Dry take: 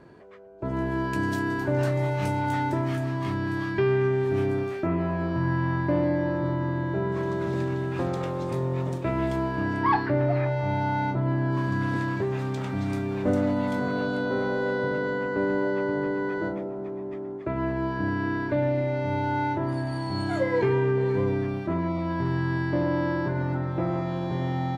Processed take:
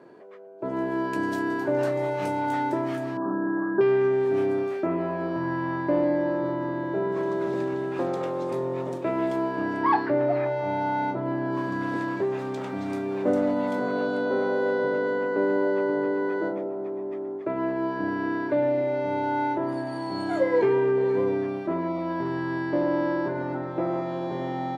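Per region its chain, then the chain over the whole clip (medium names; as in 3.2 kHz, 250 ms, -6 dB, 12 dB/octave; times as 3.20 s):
3.17–3.81 s: brick-wall FIR band-pass 150–1700 Hz + bass shelf 210 Hz +9.5 dB
whole clip: high-pass 420 Hz 12 dB/octave; tilt shelf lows +6.5 dB, about 650 Hz; trim +3.5 dB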